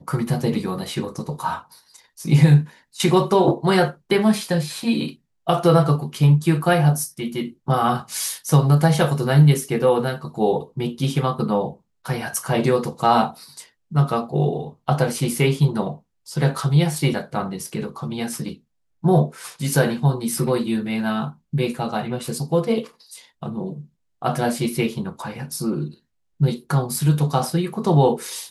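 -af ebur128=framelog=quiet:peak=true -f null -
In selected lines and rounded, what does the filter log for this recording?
Integrated loudness:
  I:         -20.9 LUFS
  Threshold: -31.3 LUFS
Loudness range:
  LRA:         6.6 LU
  Threshold: -41.3 LUFS
  LRA low:   -25.5 LUFS
  LRA high:  -18.9 LUFS
True peak:
  Peak:       -2.6 dBFS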